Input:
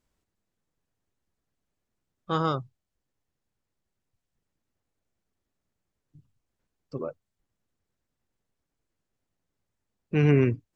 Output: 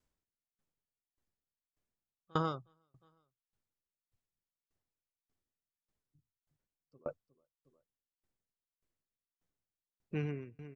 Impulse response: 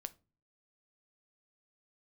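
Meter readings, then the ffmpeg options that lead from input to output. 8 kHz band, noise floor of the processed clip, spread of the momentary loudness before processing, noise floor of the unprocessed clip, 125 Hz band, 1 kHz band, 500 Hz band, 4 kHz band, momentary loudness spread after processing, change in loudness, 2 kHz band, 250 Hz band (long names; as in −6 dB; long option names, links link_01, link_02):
can't be measured, below −85 dBFS, 16 LU, −84 dBFS, −15.5 dB, −8.5 dB, −14.0 dB, −10.0 dB, 11 LU, −13.5 dB, −13.5 dB, −14.5 dB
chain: -af "aecho=1:1:360|720:0.0708|0.0234,aeval=exprs='val(0)*pow(10,-31*if(lt(mod(1.7*n/s,1),2*abs(1.7)/1000),1-mod(1.7*n/s,1)/(2*abs(1.7)/1000),(mod(1.7*n/s,1)-2*abs(1.7)/1000)/(1-2*abs(1.7)/1000))/20)':channel_layout=same,volume=-3dB"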